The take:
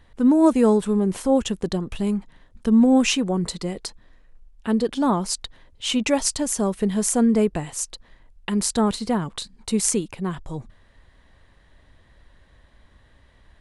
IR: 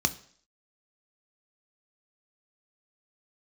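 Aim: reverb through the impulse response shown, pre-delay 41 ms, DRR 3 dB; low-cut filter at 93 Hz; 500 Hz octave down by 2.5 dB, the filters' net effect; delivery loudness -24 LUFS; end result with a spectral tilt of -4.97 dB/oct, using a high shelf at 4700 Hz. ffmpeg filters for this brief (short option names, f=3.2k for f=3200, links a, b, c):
-filter_complex "[0:a]highpass=93,equalizer=f=500:t=o:g=-3,highshelf=f=4.7k:g=-3.5,asplit=2[a][b];[1:a]atrim=start_sample=2205,adelay=41[c];[b][c]afir=irnorm=-1:irlink=0,volume=-11.5dB[d];[a][d]amix=inputs=2:normalize=0,volume=-4dB"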